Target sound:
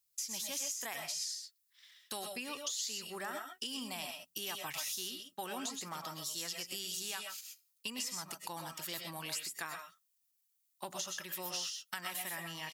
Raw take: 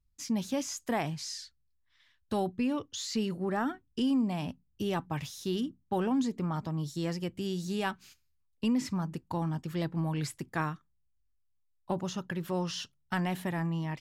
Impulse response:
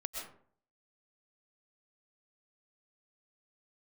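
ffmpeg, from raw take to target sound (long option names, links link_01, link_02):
-filter_complex "[0:a]aderivative,acompressor=threshold=-51dB:ratio=6,atempo=1.1[link_01];[1:a]atrim=start_sample=2205,atrim=end_sample=6174[link_02];[link_01][link_02]afir=irnorm=-1:irlink=0,volume=16dB"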